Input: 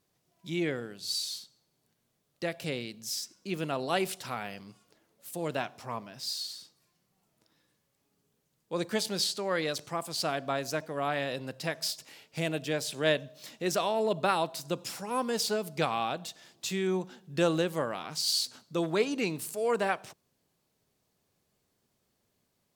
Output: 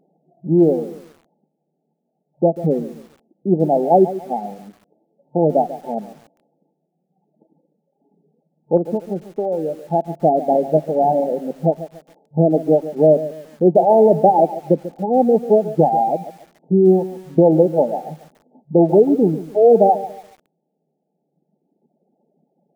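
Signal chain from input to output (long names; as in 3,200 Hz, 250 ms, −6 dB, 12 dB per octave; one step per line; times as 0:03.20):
0:10.45–0:11.35: one scale factor per block 3 bits
reverb reduction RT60 2 s
brick-wall band-pass 140–890 Hz
0:08.77–0:09.84: downward compressor 4 to 1, threshold −39 dBFS, peak gain reduction 11.5 dB
boost into a limiter +21 dB
feedback echo at a low word length 142 ms, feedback 35%, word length 6 bits, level −14 dB
level −2 dB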